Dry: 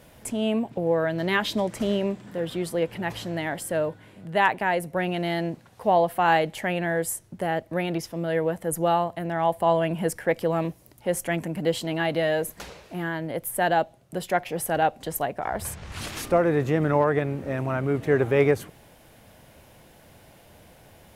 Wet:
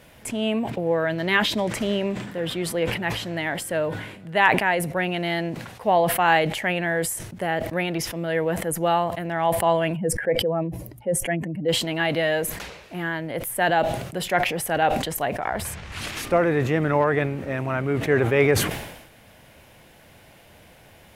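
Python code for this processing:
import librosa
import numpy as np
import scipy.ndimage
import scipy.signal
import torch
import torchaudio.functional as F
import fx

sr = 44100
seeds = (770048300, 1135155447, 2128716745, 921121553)

y = fx.spec_expand(x, sr, power=1.7, at=(9.95, 11.68), fade=0.02)
y = fx.peak_eq(y, sr, hz=2300.0, db=5.5, octaves=1.5)
y = fx.sustainer(y, sr, db_per_s=60.0)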